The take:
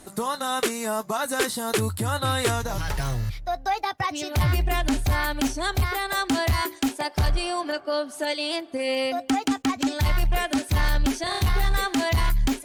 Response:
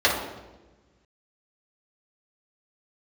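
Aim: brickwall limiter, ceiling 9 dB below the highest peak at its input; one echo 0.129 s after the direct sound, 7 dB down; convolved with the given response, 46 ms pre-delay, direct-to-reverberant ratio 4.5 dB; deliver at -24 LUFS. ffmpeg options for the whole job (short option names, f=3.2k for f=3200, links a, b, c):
-filter_complex "[0:a]alimiter=limit=-24dB:level=0:latency=1,aecho=1:1:129:0.447,asplit=2[a][b];[1:a]atrim=start_sample=2205,adelay=46[c];[b][c]afir=irnorm=-1:irlink=0,volume=-23.5dB[d];[a][d]amix=inputs=2:normalize=0,volume=6dB"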